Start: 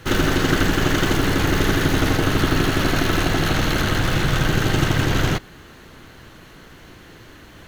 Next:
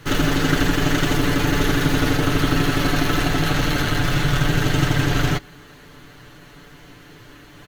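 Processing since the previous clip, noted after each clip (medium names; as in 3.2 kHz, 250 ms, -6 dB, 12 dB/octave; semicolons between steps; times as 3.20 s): comb 6.9 ms; trim -2 dB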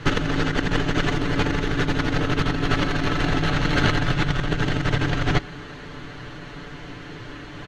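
compressor with a negative ratio -22 dBFS, ratio -0.5; distance through air 110 m; trim +2.5 dB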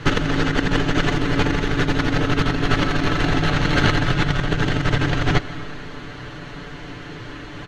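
reverberation RT60 1.8 s, pre-delay 105 ms, DRR 15 dB; trim +2.5 dB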